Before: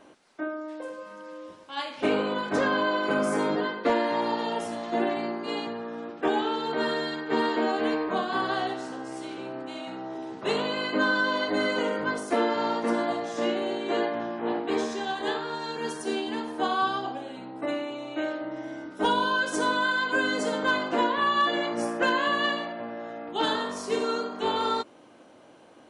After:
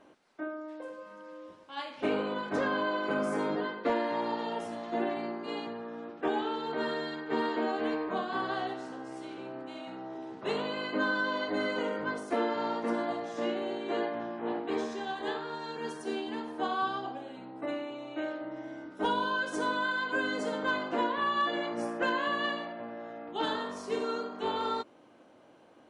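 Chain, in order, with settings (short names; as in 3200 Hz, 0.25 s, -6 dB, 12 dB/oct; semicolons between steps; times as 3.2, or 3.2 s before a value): high shelf 4800 Hz -7.5 dB; gain -5 dB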